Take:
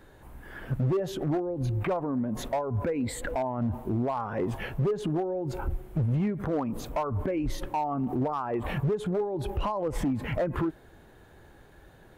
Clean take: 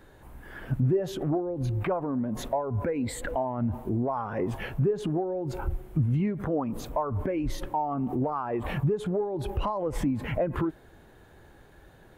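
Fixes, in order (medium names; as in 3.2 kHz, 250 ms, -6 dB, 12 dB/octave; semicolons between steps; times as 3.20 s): clip repair -22.5 dBFS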